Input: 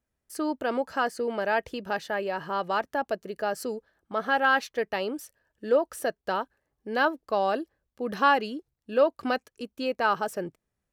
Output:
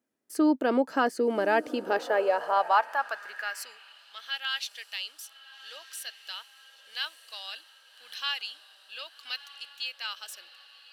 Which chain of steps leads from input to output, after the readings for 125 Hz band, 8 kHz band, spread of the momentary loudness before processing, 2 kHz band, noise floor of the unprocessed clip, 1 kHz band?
n/a, +1.0 dB, 13 LU, -4.0 dB, -84 dBFS, -3.0 dB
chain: diffused feedback echo 1.231 s, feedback 56%, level -15 dB; high-pass sweep 270 Hz -> 3300 Hz, 1.66–4.03

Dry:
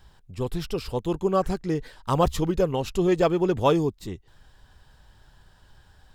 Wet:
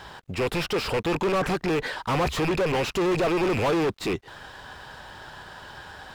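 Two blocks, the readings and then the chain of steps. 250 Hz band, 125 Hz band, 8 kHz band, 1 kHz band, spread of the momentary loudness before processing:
-1.0 dB, -2.0 dB, +3.0 dB, +0.5 dB, 11 LU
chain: rattling part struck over -33 dBFS, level -25 dBFS; overdrive pedal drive 39 dB, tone 1800 Hz, clips at -7.5 dBFS; crossover distortion -51 dBFS; gain -8.5 dB

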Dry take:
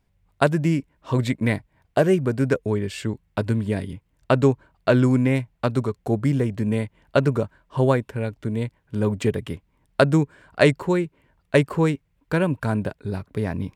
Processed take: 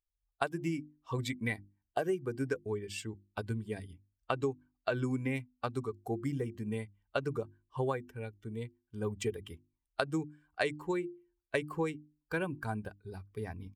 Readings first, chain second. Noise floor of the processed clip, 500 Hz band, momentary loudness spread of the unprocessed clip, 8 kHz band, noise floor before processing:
under -85 dBFS, -13.5 dB, 10 LU, -8.5 dB, -68 dBFS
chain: per-bin expansion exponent 1.5; low shelf 340 Hz -7.5 dB; notches 50/100/150/200/250/300/350 Hz; comb 2.6 ms, depth 33%; compressor 6:1, threshold -25 dBFS, peak gain reduction 10.5 dB; gain -3.5 dB

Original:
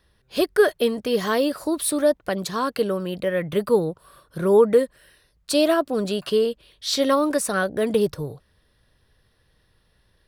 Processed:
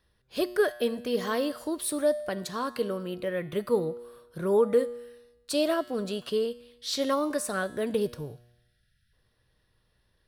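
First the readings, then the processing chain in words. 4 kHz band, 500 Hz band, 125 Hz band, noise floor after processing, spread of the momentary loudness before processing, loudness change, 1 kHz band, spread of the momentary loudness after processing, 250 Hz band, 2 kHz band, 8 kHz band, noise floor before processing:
-7.0 dB, -7.0 dB, -7.5 dB, -71 dBFS, 8 LU, -7.0 dB, -7.0 dB, 9 LU, -7.0 dB, -7.0 dB, -7.0 dB, -65 dBFS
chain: spectral delete 8.37–9.13, 220–1300 Hz; resonator 120 Hz, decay 1 s, harmonics all, mix 60%

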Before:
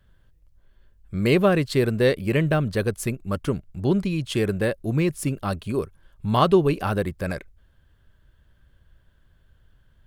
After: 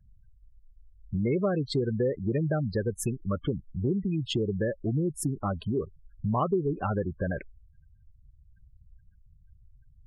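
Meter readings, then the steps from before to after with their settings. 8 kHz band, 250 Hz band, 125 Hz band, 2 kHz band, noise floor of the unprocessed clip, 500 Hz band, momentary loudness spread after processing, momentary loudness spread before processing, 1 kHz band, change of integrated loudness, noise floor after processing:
-3.0 dB, -5.5 dB, -5.0 dB, -12.0 dB, -60 dBFS, -7.0 dB, 6 LU, 11 LU, -7.5 dB, -6.5 dB, -60 dBFS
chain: spectral gate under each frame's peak -15 dB strong; compressor 3:1, threshold -28 dBFS, peak gain reduction 12 dB; gain +1.5 dB

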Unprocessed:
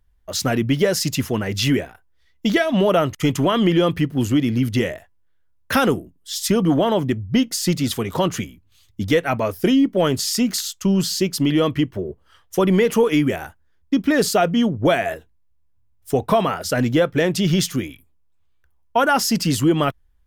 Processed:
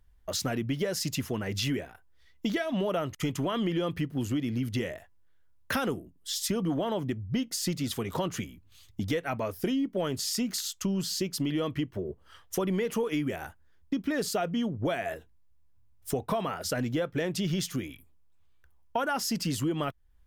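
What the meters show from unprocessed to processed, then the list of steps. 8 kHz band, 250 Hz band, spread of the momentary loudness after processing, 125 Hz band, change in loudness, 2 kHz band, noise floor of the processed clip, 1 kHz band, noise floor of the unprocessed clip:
-8.5 dB, -11.5 dB, 7 LU, -11.0 dB, -11.5 dB, -11.5 dB, -59 dBFS, -12.0 dB, -59 dBFS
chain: compressor 2.5:1, threshold -33 dBFS, peak gain reduction 14 dB

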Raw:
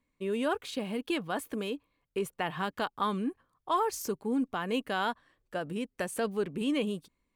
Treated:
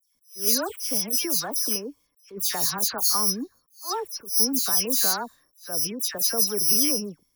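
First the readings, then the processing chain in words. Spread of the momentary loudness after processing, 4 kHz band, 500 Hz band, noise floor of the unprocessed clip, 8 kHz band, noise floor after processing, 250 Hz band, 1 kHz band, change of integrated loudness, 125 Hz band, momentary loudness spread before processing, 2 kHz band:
11 LU, +14.0 dB, -1.0 dB, -80 dBFS, +23.5 dB, -70 dBFS, -0.5 dB, -1.0 dB, +11.0 dB, -0.5 dB, 8 LU, -0.5 dB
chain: careless resampling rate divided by 8×, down filtered, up zero stuff; dispersion lows, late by 0.149 s, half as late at 2800 Hz; attack slew limiter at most 180 dB/s

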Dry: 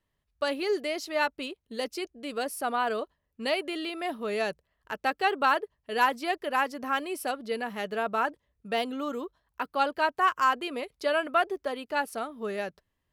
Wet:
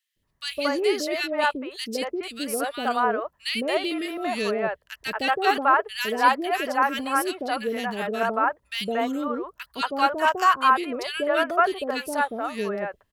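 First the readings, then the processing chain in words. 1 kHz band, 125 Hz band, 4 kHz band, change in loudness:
+5.5 dB, n/a, +6.0 dB, +5.0 dB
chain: three bands offset in time highs, lows, mids 0.16/0.23 s, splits 550/2000 Hz; gain +7 dB

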